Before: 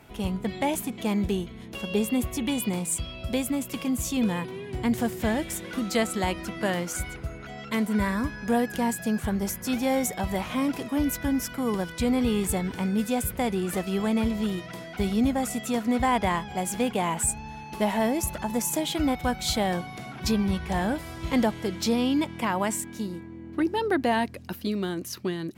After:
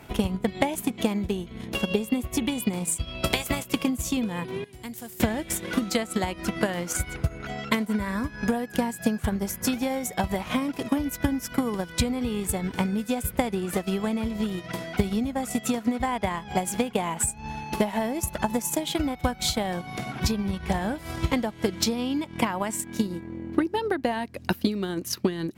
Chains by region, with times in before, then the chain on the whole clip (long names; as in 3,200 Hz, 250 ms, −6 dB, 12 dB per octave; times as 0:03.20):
0:03.22–0:03.64: ceiling on every frequency bin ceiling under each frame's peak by 22 dB + double-tracking delay 17 ms −12.5 dB
0:04.64–0:05.20: first-order pre-emphasis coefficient 0.8 + downward compressor 2 to 1, threshold −46 dBFS
whole clip: downward compressor 5 to 1, threshold −31 dBFS; transient designer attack +8 dB, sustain −6 dB; level +5 dB